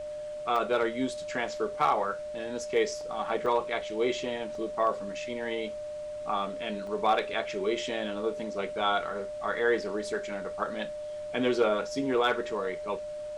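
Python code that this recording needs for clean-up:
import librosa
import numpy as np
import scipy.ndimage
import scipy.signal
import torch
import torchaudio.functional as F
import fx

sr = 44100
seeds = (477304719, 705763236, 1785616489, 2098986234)

y = fx.fix_declip(x, sr, threshold_db=-16.0)
y = fx.notch(y, sr, hz=600.0, q=30.0)
y = fx.fix_interpolate(y, sr, at_s=(0.56, 3.01, 3.46, 4.55, 6.87), length_ms=2.0)
y = fx.noise_reduce(y, sr, print_start_s=5.72, print_end_s=6.22, reduce_db=30.0)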